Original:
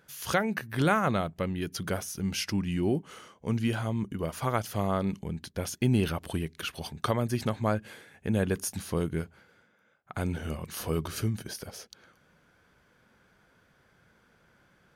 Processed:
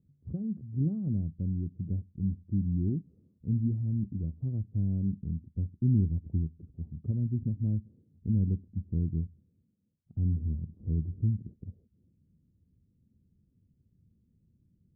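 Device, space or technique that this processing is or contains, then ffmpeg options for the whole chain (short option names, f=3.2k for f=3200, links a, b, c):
the neighbour's flat through the wall: -af "lowpass=f=260:w=0.5412,lowpass=f=260:w=1.3066,equalizer=f=86:t=o:w=0.73:g=8,volume=-1dB"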